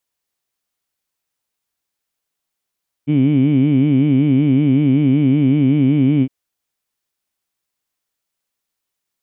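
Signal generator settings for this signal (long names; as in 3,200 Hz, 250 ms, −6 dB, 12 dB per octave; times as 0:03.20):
vowel by formant synthesis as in heed, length 3.21 s, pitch 140 Hz, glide 0 semitones, vibrato depth 1.45 semitones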